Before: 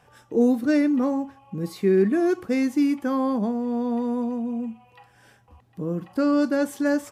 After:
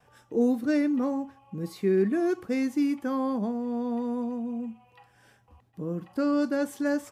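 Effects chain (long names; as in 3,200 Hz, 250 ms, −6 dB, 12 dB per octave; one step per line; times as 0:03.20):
noise gate with hold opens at −51 dBFS
level −4.5 dB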